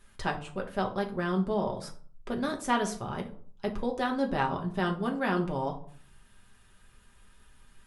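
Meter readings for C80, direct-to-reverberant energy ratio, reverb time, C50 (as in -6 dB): 17.0 dB, 0.5 dB, 0.55 s, 12.0 dB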